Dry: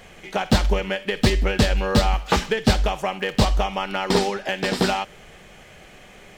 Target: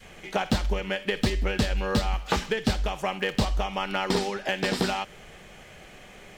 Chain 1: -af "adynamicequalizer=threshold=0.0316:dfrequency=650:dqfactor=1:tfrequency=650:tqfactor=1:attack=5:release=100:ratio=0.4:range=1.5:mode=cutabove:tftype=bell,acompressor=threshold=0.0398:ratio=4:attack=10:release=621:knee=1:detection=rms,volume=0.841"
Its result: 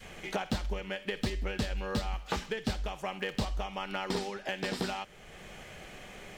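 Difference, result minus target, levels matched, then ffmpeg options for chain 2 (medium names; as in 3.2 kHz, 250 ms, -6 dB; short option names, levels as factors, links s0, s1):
compression: peak gain reduction +8 dB
-af "adynamicequalizer=threshold=0.0316:dfrequency=650:dqfactor=1:tfrequency=650:tqfactor=1:attack=5:release=100:ratio=0.4:range=1.5:mode=cutabove:tftype=bell,acompressor=threshold=0.133:ratio=4:attack=10:release=621:knee=1:detection=rms,volume=0.841"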